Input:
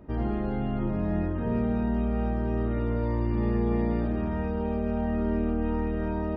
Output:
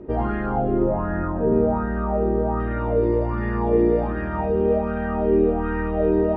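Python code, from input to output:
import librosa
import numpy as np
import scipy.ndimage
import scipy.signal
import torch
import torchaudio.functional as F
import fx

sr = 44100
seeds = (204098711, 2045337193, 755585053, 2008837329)

y = fx.air_absorb(x, sr, metres=100.0)
y = fx.rider(y, sr, range_db=10, speed_s=2.0)
y = fx.high_shelf_res(y, sr, hz=1800.0, db=-8.0, q=1.5, at=(0.46, 2.6))
y = y + 10.0 ** (-9.0 / 20.0) * np.pad(y, (int(362 * sr / 1000.0), 0))[:len(y)]
y = fx.bell_lfo(y, sr, hz=1.3, low_hz=370.0, high_hz=1700.0, db=16)
y = F.gain(torch.from_numpy(y), 1.5).numpy()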